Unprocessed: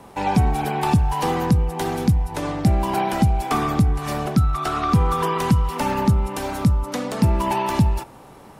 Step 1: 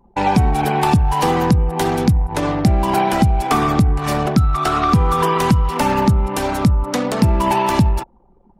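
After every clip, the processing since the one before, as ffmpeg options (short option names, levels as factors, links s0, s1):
-af "anlmdn=10,acompressor=threshold=0.1:ratio=2,volume=2.24"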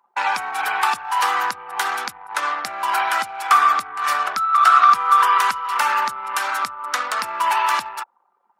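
-af "highpass=f=1300:t=q:w=3.1,volume=0.891"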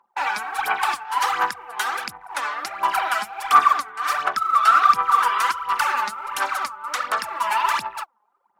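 -af "aphaser=in_gain=1:out_gain=1:delay=4.8:decay=0.67:speed=1.4:type=sinusoidal,volume=0.562"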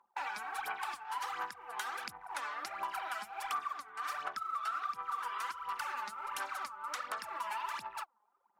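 -af "acompressor=threshold=0.0316:ratio=4,volume=0.422"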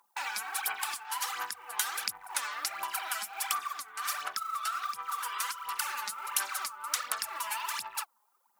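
-af "crystalizer=i=8:c=0,volume=0.708"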